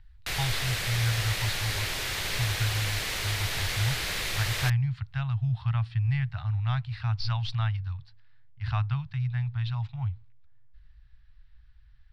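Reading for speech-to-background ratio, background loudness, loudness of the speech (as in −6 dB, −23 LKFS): −1.0 dB, −30.0 LKFS, −31.0 LKFS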